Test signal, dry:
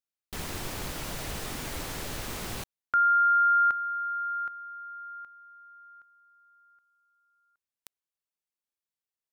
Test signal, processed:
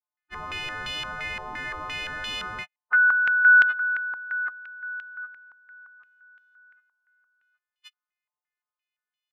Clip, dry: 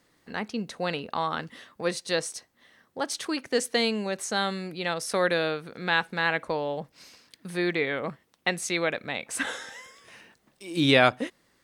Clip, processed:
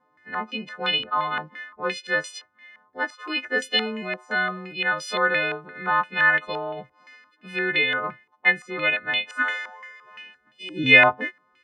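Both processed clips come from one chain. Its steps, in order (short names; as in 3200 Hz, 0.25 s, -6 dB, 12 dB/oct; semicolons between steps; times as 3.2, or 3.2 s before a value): frequency quantiser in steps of 3 st; loudest bins only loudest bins 64; stepped low-pass 5.8 Hz 980–3100 Hz; gain -2.5 dB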